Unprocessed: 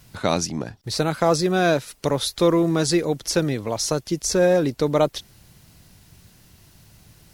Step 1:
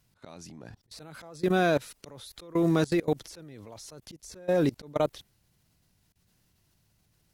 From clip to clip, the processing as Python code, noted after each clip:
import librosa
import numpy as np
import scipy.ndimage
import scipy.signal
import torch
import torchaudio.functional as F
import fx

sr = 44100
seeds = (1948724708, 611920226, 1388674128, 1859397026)

y = fx.dynamic_eq(x, sr, hz=5500.0, q=1.7, threshold_db=-41.0, ratio=4.0, max_db=-5)
y = fx.auto_swell(y, sr, attack_ms=298.0)
y = fx.level_steps(y, sr, step_db=23)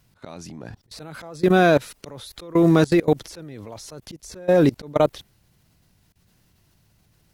y = fx.peak_eq(x, sr, hz=9000.0, db=-3.5, octaves=2.4)
y = F.gain(torch.from_numpy(y), 8.5).numpy()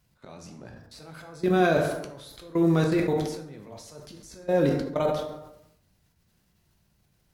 y = fx.rev_plate(x, sr, seeds[0], rt60_s=0.87, hf_ratio=0.55, predelay_ms=0, drr_db=2.0)
y = fx.sustainer(y, sr, db_per_s=61.0)
y = F.gain(torch.from_numpy(y), -8.5).numpy()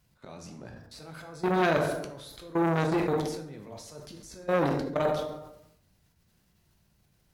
y = fx.transformer_sat(x, sr, knee_hz=1300.0)